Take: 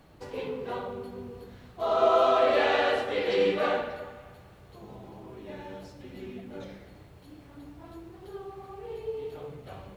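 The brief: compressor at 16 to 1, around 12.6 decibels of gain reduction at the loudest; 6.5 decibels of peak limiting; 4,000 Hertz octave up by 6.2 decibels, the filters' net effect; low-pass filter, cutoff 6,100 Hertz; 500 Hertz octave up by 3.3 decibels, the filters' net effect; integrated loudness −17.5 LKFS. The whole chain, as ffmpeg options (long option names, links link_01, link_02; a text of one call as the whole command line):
ffmpeg -i in.wav -af "lowpass=6100,equalizer=frequency=500:width_type=o:gain=4,equalizer=frequency=4000:width_type=o:gain=8.5,acompressor=threshold=-28dB:ratio=16,volume=21dB,alimiter=limit=-6.5dB:level=0:latency=1" out.wav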